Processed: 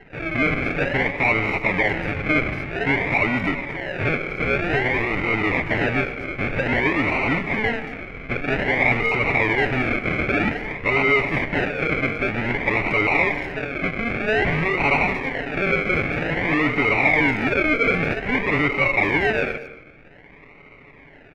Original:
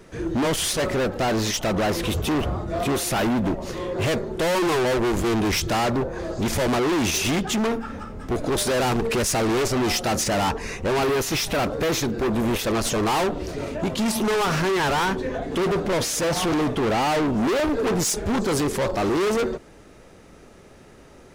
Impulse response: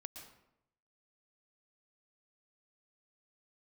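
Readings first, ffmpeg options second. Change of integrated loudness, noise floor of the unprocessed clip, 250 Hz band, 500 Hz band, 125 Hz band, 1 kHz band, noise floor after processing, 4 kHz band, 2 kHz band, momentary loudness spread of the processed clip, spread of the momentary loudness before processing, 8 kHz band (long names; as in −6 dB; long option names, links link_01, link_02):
+2.5 dB, −48 dBFS, −1.5 dB, −1.5 dB, +0.5 dB, −0.5 dB, −47 dBFS, −6.0 dB, +10.5 dB, 7 LU, 6 LU, below −25 dB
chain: -filter_complex "[0:a]aecho=1:1:7:0.54,acrusher=samples=37:mix=1:aa=0.000001:lfo=1:lforange=22.2:lforate=0.52,lowpass=frequency=2200:width_type=q:width=8.4,asplit=2[link_01][link_02];[link_02]adelay=230,highpass=300,lowpass=3400,asoftclip=type=hard:threshold=-12.5dB,volume=-17dB[link_03];[link_01][link_03]amix=inputs=2:normalize=0,asplit=2[link_04][link_05];[1:a]atrim=start_sample=2205[link_06];[link_05][link_06]afir=irnorm=-1:irlink=0,volume=-3.5dB[link_07];[link_04][link_07]amix=inputs=2:normalize=0,volume=-5dB"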